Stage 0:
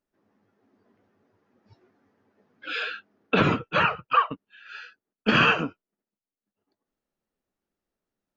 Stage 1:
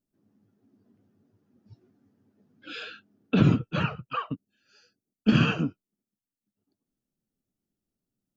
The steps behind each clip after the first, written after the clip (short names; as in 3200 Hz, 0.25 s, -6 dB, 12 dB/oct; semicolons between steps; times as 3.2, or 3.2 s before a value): spectral gain 4.41–5.22, 840–4300 Hz -14 dB; graphic EQ 125/250/500/1000/2000/4000 Hz +7/+4/-6/-9/-10/-3 dB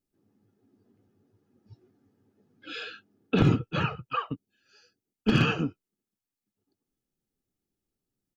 one-sided fold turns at -13.5 dBFS; comb 2.4 ms, depth 34%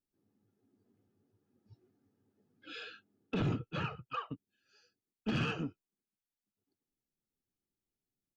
soft clip -18.5 dBFS, distortion -13 dB; gain -8 dB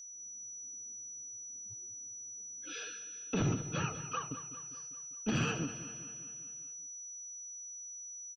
whine 5900 Hz -47 dBFS; feedback echo 0.199 s, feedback 57%, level -13 dB; ending taper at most 190 dB/s; gain +1 dB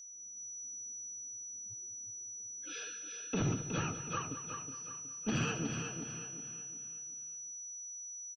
feedback echo 0.368 s, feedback 39%, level -7 dB; gain -1.5 dB